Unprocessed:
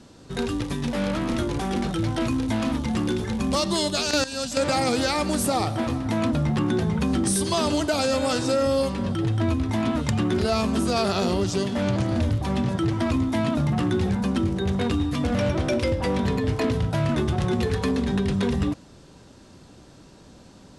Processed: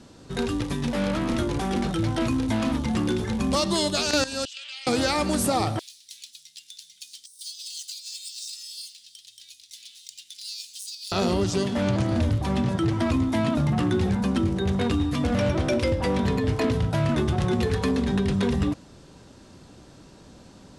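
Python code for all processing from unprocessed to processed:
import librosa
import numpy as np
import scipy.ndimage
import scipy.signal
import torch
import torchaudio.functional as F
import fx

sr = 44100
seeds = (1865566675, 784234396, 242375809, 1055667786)

y = fx.chain(x, sr, fx.ladder_bandpass(hz=3200.0, resonance_pct=75),
    fx.env_flatten(amount_pct=50), at=(4.45, 4.87))
y = fx.chain(y, sr, fx.median_filter(points=3),
    fx.cheby2_highpass(hz=1200.0, order=4, stop_db=60),
    fx.over_compress(threshold_db=-37.0, ratio=-0.5), at=(5.79, 11.12))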